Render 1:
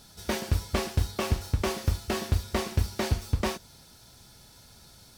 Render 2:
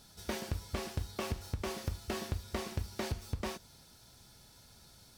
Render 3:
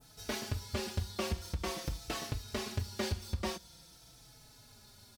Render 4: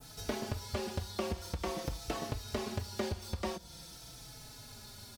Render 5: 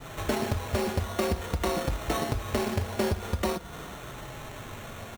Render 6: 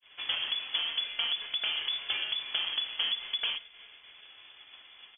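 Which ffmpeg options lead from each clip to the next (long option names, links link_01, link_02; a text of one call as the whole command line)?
ffmpeg -i in.wav -af "acompressor=threshold=-27dB:ratio=4,volume=-5.5dB" out.wav
ffmpeg -i in.wav -filter_complex "[0:a]adynamicequalizer=threshold=0.00126:dfrequency=4500:dqfactor=0.81:tfrequency=4500:tqfactor=0.81:attack=5:release=100:ratio=0.375:range=2:mode=boostabove:tftype=bell,asplit=2[link_01][link_02];[link_02]adelay=4.1,afreqshift=-0.47[link_03];[link_01][link_03]amix=inputs=2:normalize=1,volume=3.5dB" out.wav
ffmpeg -i in.wav -filter_complex "[0:a]acrossover=split=450|1000[link_01][link_02][link_03];[link_01]acompressor=threshold=-44dB:ratio=4[link_04];[link_02]acompressor=threshold=-46dB:ratio=4[link_05];[link_03]acompressor=threshold=-53dB:ratio=4[link_06];[link_04][link_05][link_06]amix=inputs=3:normalize=0,volume=7.5dB" out.wav
ffmpeg -i in.wav -filter_complex "[0:a]asplit=2[link_01][link_02];[link_02]alimiter=level_in=5dB:limit=-24dB:level=0:latency=1:release=24,volume=-5dB,volume=-1.5dB[link_03];[link_01][link_03]amix=inputs=2:normalize=0,acrusher=samples=9:mix=1:aa=0.000001,volume=4.5dB" out.wav
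ffmpeg -i in.wav -af "agate=range=-33dB:threshold=-33dB:ratio=3:detection=peak,lowpass=frequency=3000:width_type=q:width=0.5098,lowpass=frequency=3000:width_type=q:width=0.6013,lowpass=frequency=3000:width_type=q:width=0.9,lowpass=frequency=3000:width_type=q:width=2.563,afreqshift=-3500,volume=-4dB" out.wav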